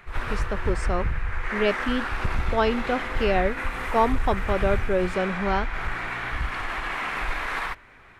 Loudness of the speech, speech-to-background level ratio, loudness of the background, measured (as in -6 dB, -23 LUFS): -26.5 LUFS, 3.0 dB, -29.5 LUFS